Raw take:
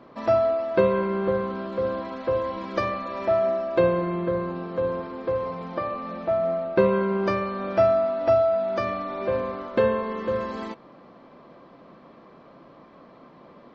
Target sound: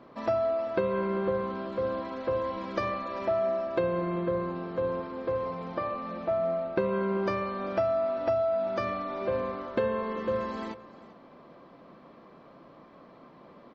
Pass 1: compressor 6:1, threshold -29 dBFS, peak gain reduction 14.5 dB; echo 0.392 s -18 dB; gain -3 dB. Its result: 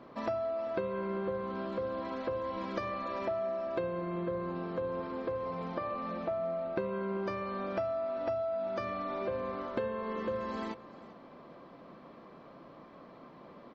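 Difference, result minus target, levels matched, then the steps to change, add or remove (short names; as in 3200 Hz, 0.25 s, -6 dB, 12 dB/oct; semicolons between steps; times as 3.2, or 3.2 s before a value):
compressor: peak gain reduction +7 dB
change: compressor 6:1, threshold -20.5 dBFS, peak gain reduction 7.5 dB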